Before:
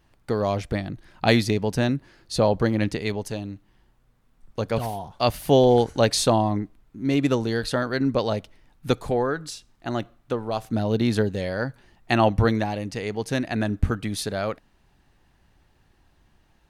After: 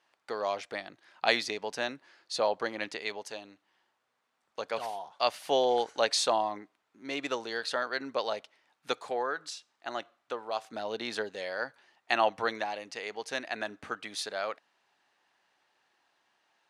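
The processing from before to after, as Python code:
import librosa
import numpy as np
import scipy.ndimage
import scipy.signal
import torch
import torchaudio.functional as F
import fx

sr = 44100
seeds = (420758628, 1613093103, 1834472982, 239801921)

y = fx.bandpass_edges(x, sr, low_hz=660.0, high_hz=7300.0)
y = F.gain(torch.from_numpy(y), -3.0).numpy()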